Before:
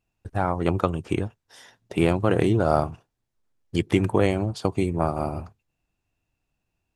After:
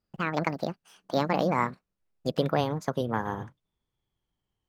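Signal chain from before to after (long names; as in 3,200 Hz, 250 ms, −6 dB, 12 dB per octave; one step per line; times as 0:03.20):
gliding playback speed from 182% → 115%
high-shelf EQ 8,900 Hz −9.5 dB
level −5 dB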